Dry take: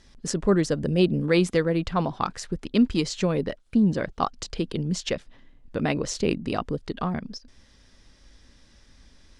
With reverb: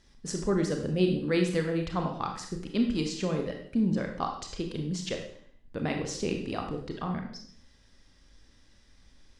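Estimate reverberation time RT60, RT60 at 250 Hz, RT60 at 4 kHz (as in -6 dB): 0.60 s, 0.65 s, 0.55 s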